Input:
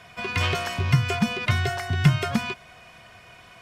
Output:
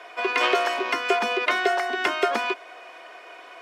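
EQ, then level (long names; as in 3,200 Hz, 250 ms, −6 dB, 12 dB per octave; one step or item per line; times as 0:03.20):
Butterworth high-pass 310 Hz 48 dB per octave
high-shelf EQ 2,200 Hz −9 dB
high-shelf EQ 8,700 Hz −6.5 dB
+8.5 dB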